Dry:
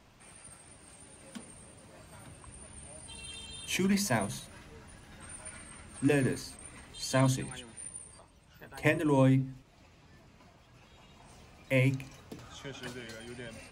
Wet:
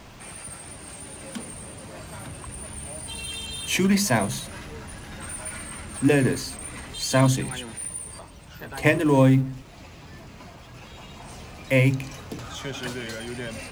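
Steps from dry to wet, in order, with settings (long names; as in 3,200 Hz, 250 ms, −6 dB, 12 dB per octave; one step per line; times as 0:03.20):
mu-law and A-law mismatch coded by mu
level +7 dB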